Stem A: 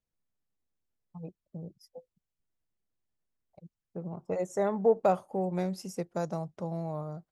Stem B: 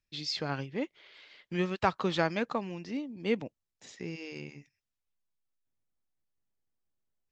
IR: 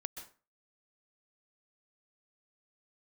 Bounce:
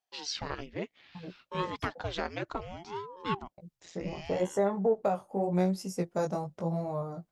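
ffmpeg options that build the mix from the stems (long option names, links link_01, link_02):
-filter_complex "[0:a]agate=range=-33dB:threshold=-55dB:ratio=3:detection=peak,flanger=delay=15:depth=5.9:speed=0.86,volume=-0.5dB[link_01];[1:a]lowshelf=frequency=160:gain=-6,aeval=exprs='val(0)*sin(2*PI*410*n/s+410*0.8/0.64*sin(2*PI*0.64*n/s))':channel_layout=same,volume=-5dB[link_02];[link_01][link_02]amix=inputs=2:normalize=0,acontrast=52,alimiter=limit=-17.5dB:level=0:latency=1:release=418"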